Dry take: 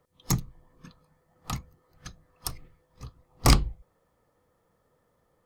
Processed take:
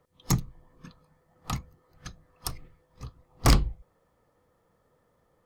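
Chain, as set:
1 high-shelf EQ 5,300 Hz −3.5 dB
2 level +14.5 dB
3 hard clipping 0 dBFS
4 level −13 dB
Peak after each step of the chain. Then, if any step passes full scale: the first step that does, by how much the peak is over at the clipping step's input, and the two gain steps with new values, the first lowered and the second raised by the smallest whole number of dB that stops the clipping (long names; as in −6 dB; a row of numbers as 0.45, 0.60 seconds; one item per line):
−6.0, +8.5, 0.0, −13.0 dBFS
step 2, 8.5 dB
step 2 +5.5 dB, step 4 −4 dB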